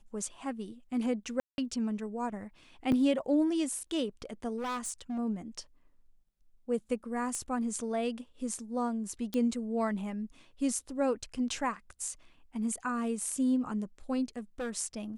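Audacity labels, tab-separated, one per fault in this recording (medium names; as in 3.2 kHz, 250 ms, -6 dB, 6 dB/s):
1.400000	1.580000	dropout 181 ms
2.920000	2.920000	dropout 4.6 ms
4.570000	5.190000	clipped -32.5 dBFS
7.350000	7.350000	pop -23 dBFS
9.340000	9.340000	pop -21 dBFS
14.370000	14.700000	clipped -32 dBFS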